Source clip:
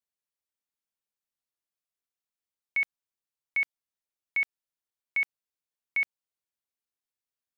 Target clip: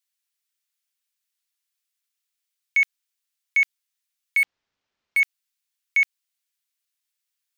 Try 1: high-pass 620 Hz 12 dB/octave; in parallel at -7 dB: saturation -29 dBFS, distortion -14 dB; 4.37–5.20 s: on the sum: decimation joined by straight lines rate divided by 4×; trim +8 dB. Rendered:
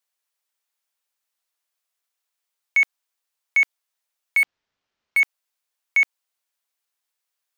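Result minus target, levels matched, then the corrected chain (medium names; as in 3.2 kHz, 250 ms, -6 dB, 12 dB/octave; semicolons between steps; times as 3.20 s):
500 Hz band +17.0 dB
high-pass 1.9 kHz 12 dB/octave; in parallel at -7 dB: saturation -29 dBFS, distortion -15 dB; 4.37–5.20 s: on the sum: decimation joined by straight lines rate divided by 4×; trim +8 dB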